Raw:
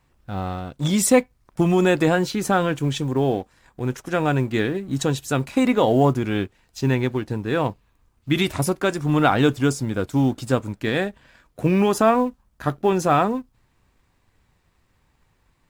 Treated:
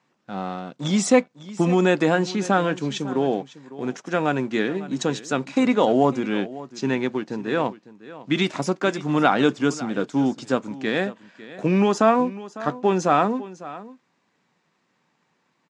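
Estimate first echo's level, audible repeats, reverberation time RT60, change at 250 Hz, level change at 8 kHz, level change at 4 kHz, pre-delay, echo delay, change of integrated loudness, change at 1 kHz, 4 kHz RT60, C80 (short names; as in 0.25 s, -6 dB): -17.0 dB, 1, none, -0.5 dB, -4.5 dB, -1.0 dB, none, 0.552 s, -1.0 dB, 0.0 dB, none, none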